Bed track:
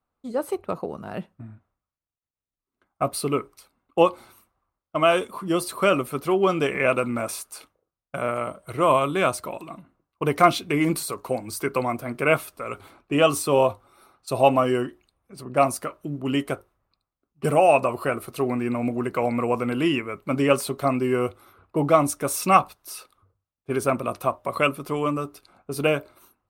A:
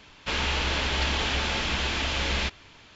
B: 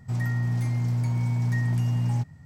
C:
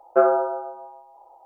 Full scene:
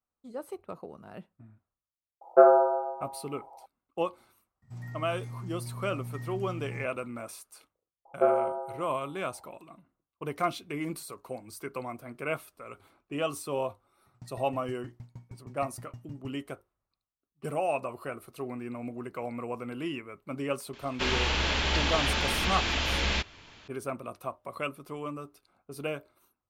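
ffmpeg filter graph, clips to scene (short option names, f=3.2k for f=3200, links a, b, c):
-filter_complex "[3:a]asplit=2[a][b];[2:a]asplit=2[c][d];[0:a]volume=-12.5dB[e];[a]equalizer=f=660:w=0.58:g=7[f];[b]lowpass=1.3k[g];[d]aeval=exprs='val(0)*pow(10,-35*if(lt(mod(6.4*n/s,1),2*abs(6.4)/1000),1-mod(6.4*n/s,1)/(2*abs(6.4)/1000),(mod(6.4*n/s,1)-2*abs(6.4)/1000)/(1-2*abs(6.4)/1000))/20)':c=same[h];[f]atrim=end=1.45,asetpts=PTS-STARTPTS,volume=-6.5dB,afade=t=in:d=0.004:c=hsin,afade=t=out:st=1.446:d=0.004:c=hsin,adelay=2210[i];[c]atrim=end=2.45,asetpts=PTS-STARTPTS,volume=-14.5dB,afade=t=in:d=0.004:c=hsin,afade=t=out:st=2.446:d=0.004:c=hsin,adelay=4620[j];[g]atrim=end=1.45,asetpts=PTS-STARTPTS,volume=-6.5dB,afade=t=in:d=0.004:c=hsin,afade=t=out:st=1.446:d=0.004:c=hsin,adelay=8050[k];[h]atrim=end=2.45,asetpts=PTS-STARTPTS,volume=-14dB,afade=t=in:d=0.004:c=hsin,afade=t=out:st=2.446:d=0.004:c=hsin,adelay=14060[l];[1:a]atrim=end=2.95,asetpts=PTS-STARTPTS,volume=-1dB,afade=t=in:d=0.004:c=hsin,afade=t=out:st=2.946:d=0.004:c=hsin,adelay=20730[m];[e][i][j][k][l][m]amix=inputs=6:normalize=0"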